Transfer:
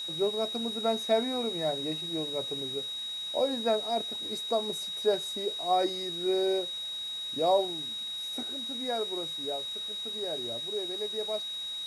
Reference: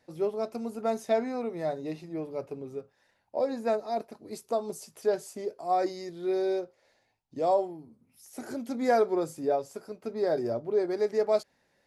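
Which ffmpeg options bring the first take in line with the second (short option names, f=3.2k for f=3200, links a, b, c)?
-af "bandreject=f=3.8k:w=30,afwtdn=0.0032,asetnsamples=n=441:p=0,asendcmd='8.43 volume volume 9.5dB',volume=0dB"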